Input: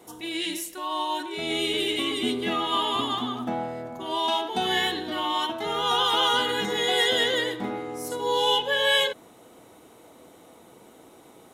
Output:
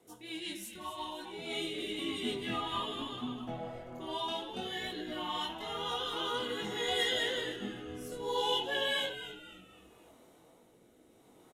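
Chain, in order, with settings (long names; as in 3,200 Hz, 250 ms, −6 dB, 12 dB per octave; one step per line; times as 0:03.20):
multi-voice chorus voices 2, 0.6 Hz, delay 21 ms, depth 4.7 ms
rotating-speaker cabinet horn 5.5 Hz, later 0.65 Hz, at 0:00.98
echo with shifted repeats 257 ms, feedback 39%, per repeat −120 Hz, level −11.5 dB
level −5.5 dB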